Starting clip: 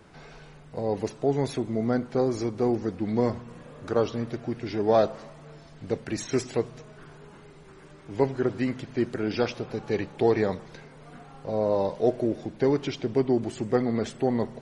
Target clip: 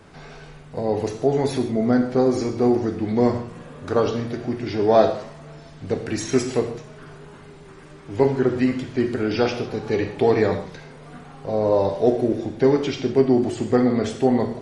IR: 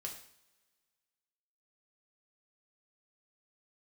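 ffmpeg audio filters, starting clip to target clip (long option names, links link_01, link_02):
-filter_complex "[0:a]asplit=2[link_01][link_02];[1:a]atrim=start_sample=2205,afade=type=out:start_time=0.15:duration=0.01,atrim=end_sample=7056,asetrate=26019,aresample=44100[link_03];[link_02][link_03]afir=irnorm=-1:irlink=0,volume=3dB[link_04];[link_01][link_04]amix=inputs=2:normalize=0,volume=-2dB"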